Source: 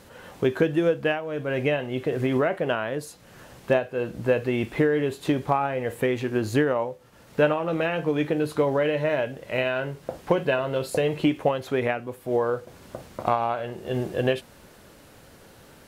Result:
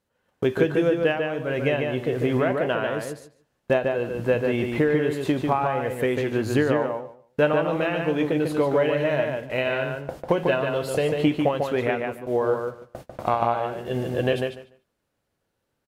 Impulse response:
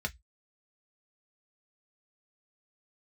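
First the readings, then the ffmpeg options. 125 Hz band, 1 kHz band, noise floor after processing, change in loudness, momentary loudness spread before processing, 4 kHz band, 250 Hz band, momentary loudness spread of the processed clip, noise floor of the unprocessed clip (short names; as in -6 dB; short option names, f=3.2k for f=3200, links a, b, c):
+1.5 dB, +1.5 dB, -77 dBFS, +1.5 dB, 8 LU, +1.0 dB, +1.5 dB, 7 LU, -51 dBFS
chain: -filter_complex "[0:a]agate=range=-28dB:threshold=-39dB:ratio=16:detection=peak,asplit=2[a][b];[b]adelay=146,lowpass=f=4.4k:p=1,volume=-4dB,asplit=2[c][d];[d]adelay=146,lowpass=f=4.4k:p=1,volume=0.17,asplit=2[e][f];[f]adelay=146,lowpass=f=4.4k:p=1,volume=0.17[g];[c][e][g]amix=inputs=3:normalize=0[h];[a][h]amix=inputs=2:normalize=0"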